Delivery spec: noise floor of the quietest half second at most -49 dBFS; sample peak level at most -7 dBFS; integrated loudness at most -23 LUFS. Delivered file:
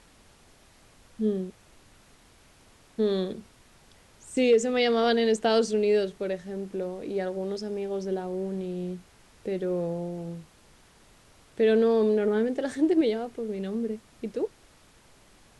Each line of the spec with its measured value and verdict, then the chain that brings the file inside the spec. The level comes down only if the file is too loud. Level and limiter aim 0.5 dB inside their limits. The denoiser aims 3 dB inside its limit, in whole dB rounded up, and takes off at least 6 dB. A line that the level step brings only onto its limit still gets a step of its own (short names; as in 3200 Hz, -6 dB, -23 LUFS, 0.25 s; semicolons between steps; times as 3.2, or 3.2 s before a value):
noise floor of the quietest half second -57 dBFS: OK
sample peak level -12.0 dBFS: OK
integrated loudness -27.5 LUFS: OK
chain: none